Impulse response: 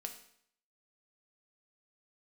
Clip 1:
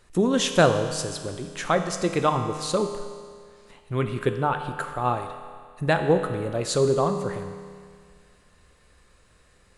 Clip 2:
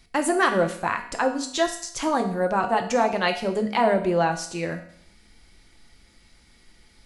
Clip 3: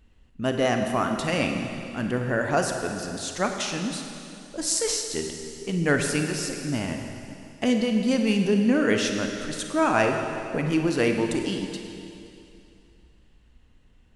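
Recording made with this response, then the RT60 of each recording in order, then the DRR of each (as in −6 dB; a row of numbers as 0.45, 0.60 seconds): 2; 2.0, 0.65, 2.7 seconds; 5.5, 4.5, 3.5 decibels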